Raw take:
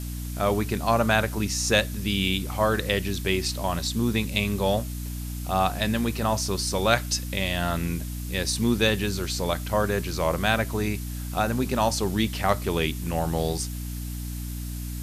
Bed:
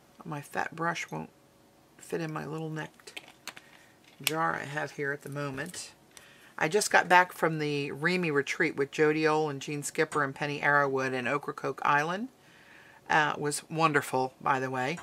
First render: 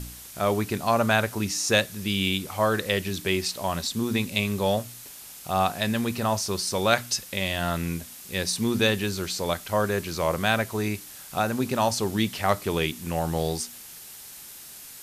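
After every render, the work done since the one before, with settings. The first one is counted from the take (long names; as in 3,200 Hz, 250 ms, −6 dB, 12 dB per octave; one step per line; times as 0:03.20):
hum removal 60 Hz, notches 5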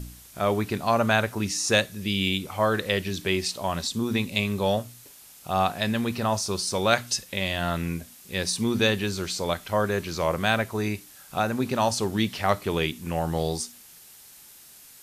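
noise reduction from a noise print 6 dB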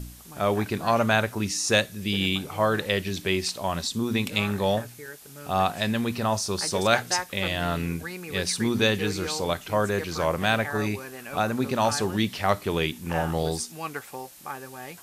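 mix in bed −9 dB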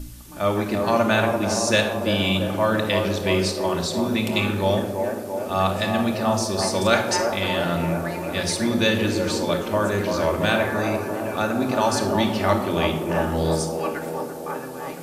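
delay with a band-pass on its return 339 ms, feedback 69%, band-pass 520 Hz, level −3.5 dB
rectangular room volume 3,000 cubic metres, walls furnished, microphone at 2.5 metres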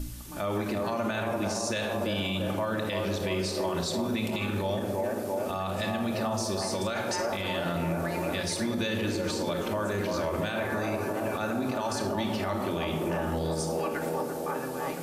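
downward compressor 2 to 1, threshold −27 dBFS, peak gain reduction 8 dB
brickwall limiter −21 dBFS, peak gain reduction 11 dB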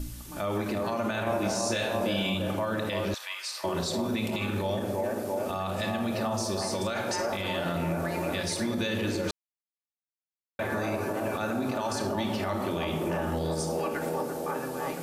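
0:01.24–0:02.34: double-tracking delay 26 ms −3.5 dB
0:03.14–0:03.64: high-pass filter 1,100 Hz 24 dB per octave
0:09.31–0:10.59: silence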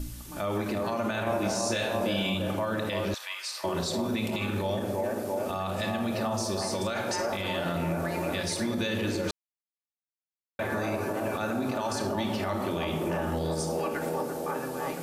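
no processing that can be heard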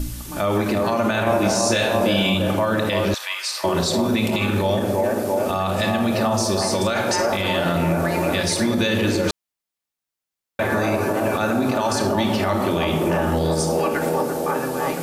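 level +9.5 dB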